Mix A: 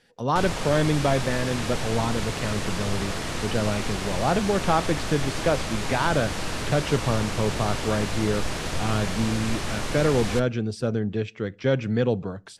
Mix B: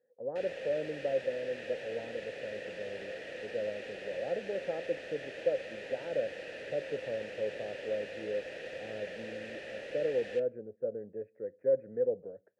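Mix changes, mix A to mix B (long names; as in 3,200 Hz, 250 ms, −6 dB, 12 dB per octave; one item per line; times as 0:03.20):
speech: add Gaussian smoothing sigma 7.6 samples
master: add formant filter e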